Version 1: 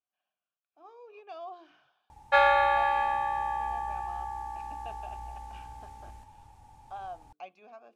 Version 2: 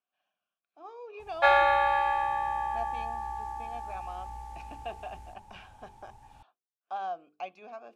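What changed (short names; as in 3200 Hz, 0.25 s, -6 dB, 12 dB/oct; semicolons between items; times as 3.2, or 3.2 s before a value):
speech +6.0 dB; background: entry -0.90 s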